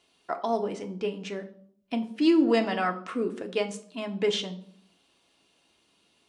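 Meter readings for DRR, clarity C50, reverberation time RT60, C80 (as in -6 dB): 5.0 dB, 14.5 dB, 0.60 s, 18.0 dB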